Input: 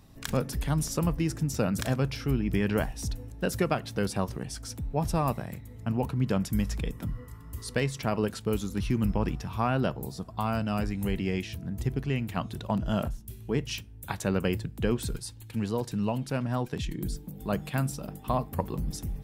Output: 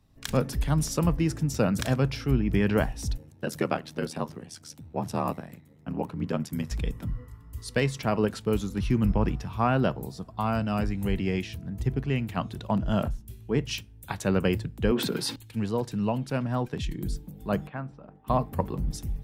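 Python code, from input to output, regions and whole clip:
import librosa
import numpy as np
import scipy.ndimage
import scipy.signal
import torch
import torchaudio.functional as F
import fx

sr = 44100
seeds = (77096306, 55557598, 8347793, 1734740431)

y = fx.chain(x, sr, fx.ring_mod(carrier_hz=39.0),
    fx.highpass(hz=120.0, slope=12), at=(3.17, 6.71))
y = fx.chain(y, sr, fx.highpass(hz=190.0, slope=24),
    fx.peak_eq(hz=8100.0, db=-14.5, octaves=1.5),
    fx.env_flatten(amount_pct=70), at=(14.91, 15.36))
y = fx.chain(y, sr, fx.lowpass(hz=1500.0, slope=12),
    fx.low_shelf(hz=490.0, db=-9.0), at=(17.67, 18.27))
y = fx.high_shelf(y, sr, hz=6200.0, db=-6.0)
y = fx.band_widen(y, sr, depth_pct=40)
y = F.gain(torch.from_numpy(y), 2.5).numpy()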